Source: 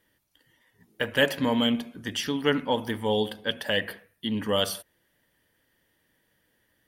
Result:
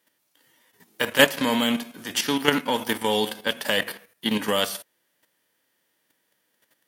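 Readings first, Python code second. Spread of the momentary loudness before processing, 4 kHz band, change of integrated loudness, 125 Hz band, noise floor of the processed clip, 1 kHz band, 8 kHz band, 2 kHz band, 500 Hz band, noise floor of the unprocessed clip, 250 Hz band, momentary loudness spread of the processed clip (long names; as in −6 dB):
9 LU, +4.0 dB, +3.5 dB, −2.0 dB, −72 dBFS, +5.0 dB, +8.0 dB, +5.0 dB, +2.0 dB, −71 dBFS, +1.5 dB, 11 LU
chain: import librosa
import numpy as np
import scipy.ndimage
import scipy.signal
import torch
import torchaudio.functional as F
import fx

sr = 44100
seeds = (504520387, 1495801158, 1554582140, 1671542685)

y = fx.envelope_flatten(x, sr, power=0.6)
y = scipy.signal.sosfilt(scipy.signal.butter(2, 200.0, 'highpass', fs=sr, output='sos'), y)
y = fx.level_steps(y, sr, step_db=10)
y = y * 10.0 ** (8.0 / 20.0)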